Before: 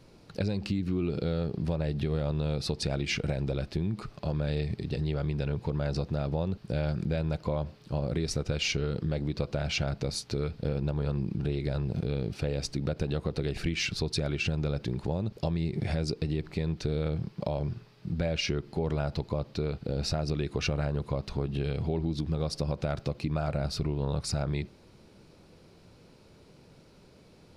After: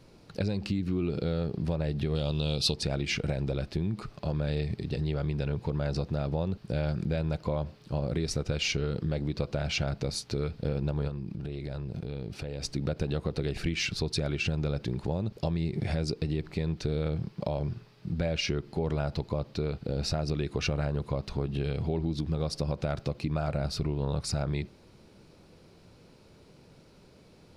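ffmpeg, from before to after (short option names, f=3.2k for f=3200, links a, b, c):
-filter_complex "[0:a]asettb=1/sr,asplit=3[a][b][c];[a]atrim=end=2.154[d];[b]atrim=start=2.15:end=2.74,asetpts=PTS-STARTPTS,afade=t=in:d=0.004:c=qsin,afade=t=out:st=0.586:d=0.004:c=qsin,highshelf=f=2.4k:t=q:w=3:g=7[e];[c]atrim=start=2.736[f];[d][e]acrossfade=d=0.004:c1=hsin:c2=qsin[g];[g][f]acrossfade=d=0.004:c1=qsin:c2=hsin,asplit=3[h][i][j];[h]afade=t=out:st=11.07:d=0.02[k];[i]acompressor=threshold=-32dB:ratio=6:attack=3.2:release=140:knee=1:detection=peak,afade=t=in:st=11.07:d=0.02,afade=t=out:st=12.6:d=0.02[l];[j]afade=t=in:st=12.6:d=0.02[m];[k][l][m]amix=inputs=3:normalize=0"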